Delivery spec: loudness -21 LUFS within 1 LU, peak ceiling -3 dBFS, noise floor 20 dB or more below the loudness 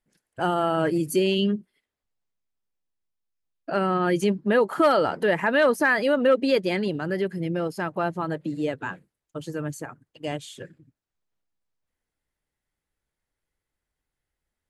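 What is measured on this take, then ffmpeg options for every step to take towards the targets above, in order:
loudness -24.0 LUFS; peak -10.0 dBFS; loudness target -21.0 LUFS
-> -af "volume=3dB"

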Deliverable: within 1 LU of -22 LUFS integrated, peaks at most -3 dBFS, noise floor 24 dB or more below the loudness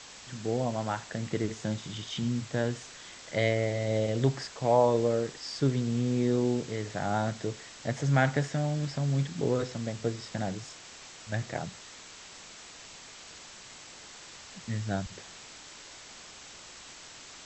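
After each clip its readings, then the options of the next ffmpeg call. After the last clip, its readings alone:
noise floor -49 dBFS; noise floor target -55 dBFS; loudness -30.5 LUFS; peak -10.5 dBFS; loudness target -22.0 LUFS
-> -af "afftdn=nr=6:nf=-49"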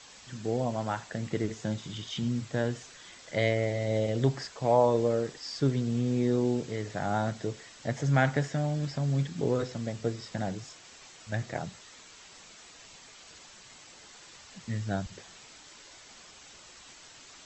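noise floor -52 dBFS; noise floor target -55 dBFS
-> -af "afftdn=nr=6:nf=-52"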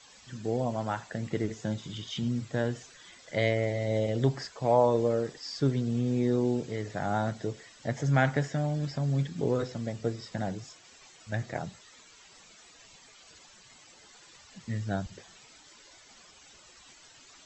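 noise floor -56 dBFS; loudness -30.5 LUFS; peak -10.5 dBFS; loudness target -22.0 LUFS
-> -af "volume=8.5dB,alimiter=limit=-3dB:level=0:latency=1"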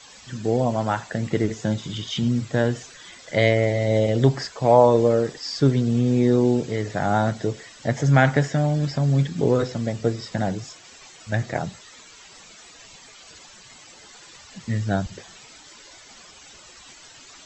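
loudness -22.0 LUFS; peak -3.0 dBFS; noise floor -47 dBFS

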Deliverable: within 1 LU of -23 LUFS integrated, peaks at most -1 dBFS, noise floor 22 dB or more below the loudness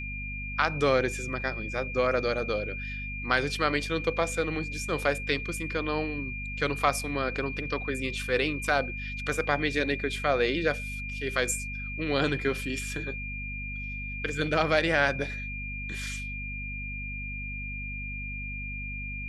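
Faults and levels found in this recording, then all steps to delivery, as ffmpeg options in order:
hum 50 Hz; harmonics up to 250 Hz; hum level -36 dBFS; steady tone 2400 Hz; tone level -36 dBFS; loudness -29.5 LUFS; peak -8.5 dBFS; loudness target -23.0 LUFS
-> -af "bandreject=f=50:t=h:w=6,bandreject=f=100:t=h:w=6,bandreject=f=150:t=h:w=6,bandreject=f=200:t=h:w=6,bandreject=f=250:t=h:w=6"
-af "bandreject=f=2.4k:w=30"
-af "volume=6.5dB"

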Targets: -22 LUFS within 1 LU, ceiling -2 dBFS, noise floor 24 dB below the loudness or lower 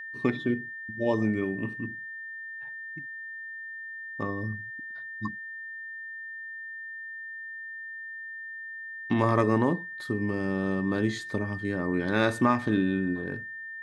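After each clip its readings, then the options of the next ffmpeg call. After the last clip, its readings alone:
steady tone 1800 Hz; tone level -37 dBFS; loudness -30.5 LUFS; peak -9.5 dBFS; loudness target -22.0 LUFS
-> -af "bandreject=f=1.8k:w=30"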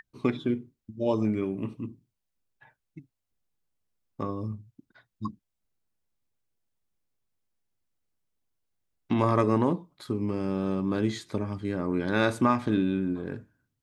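steady tone none; loudness -29.0 LUFS; peak -9.5 dBFS; loudness target -22.0 LUFS
-> -af "volume=7dB"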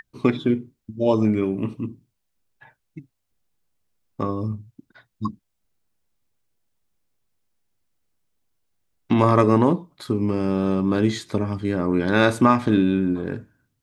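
loudness -22.0 LUFS; peak -2.5 dBFS; noise floor -76 dBFS

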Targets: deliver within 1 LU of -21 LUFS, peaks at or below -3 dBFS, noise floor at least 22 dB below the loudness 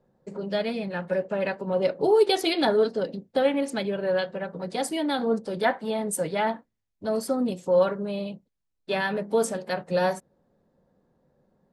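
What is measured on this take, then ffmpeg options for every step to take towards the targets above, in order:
loudness -26.5 LUFS; peak -9.5 dBFS; loudness target -21.0 LUFS
-> -af "volume=5.5dB"

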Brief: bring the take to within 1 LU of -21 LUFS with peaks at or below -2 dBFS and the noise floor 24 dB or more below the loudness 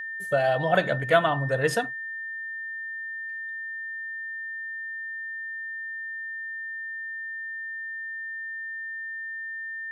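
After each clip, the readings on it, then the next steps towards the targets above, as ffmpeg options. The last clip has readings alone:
steady tone 1800 Hz; tone level -32 dBFS; loudness -29.5 LUFS; peak -6.5 dBFS; loudness target -21.0 LUFS
-> -af "bandreject=f=1.8k:w=30"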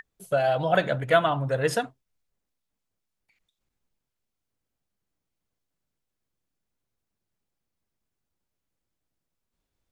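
steady tone none; loudness -24.5 LUFS; peak -7.0 dBFS; loudness target -21.0 LUFS
-> -af "volume=3.5dB"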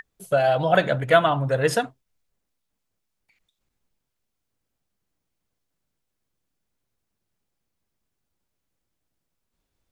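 loudness -21.0 LUFS; peak -3.5 dBFS; noise floor -80 dBFS

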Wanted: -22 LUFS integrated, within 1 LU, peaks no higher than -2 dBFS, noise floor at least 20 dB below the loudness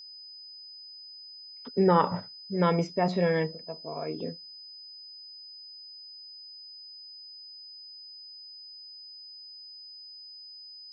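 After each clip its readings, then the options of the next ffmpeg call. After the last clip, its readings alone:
steady tone 5000 Hz; tone level -44 dBFS; loudness -28.5 LUFS; peak -10.0 dBFS; loudness target -22.0 LUFS
-> -af "bandreject=f=5k:w=30"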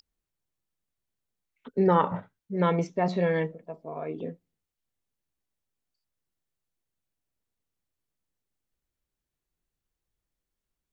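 steady tone none; loudness -27.5 LUFS; peak -10.0 dBFS; loudness target -22.0 LUFS
-> -af "volume=5.5dB"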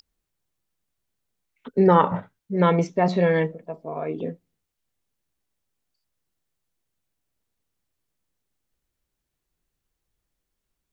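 loudness -22.0 LUFS; peak -4.5 dBFS; noise floor -82 dBFS

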